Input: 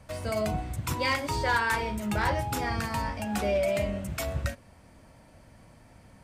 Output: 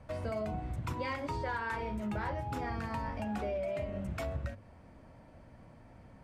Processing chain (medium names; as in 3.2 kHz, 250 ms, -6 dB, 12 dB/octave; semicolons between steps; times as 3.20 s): low-pass 1.4 kHz 6 dB/octave; hum notches 50/100/150/200 Hz; compression, threshold -33 dBFS, peak gain reduction 9 dB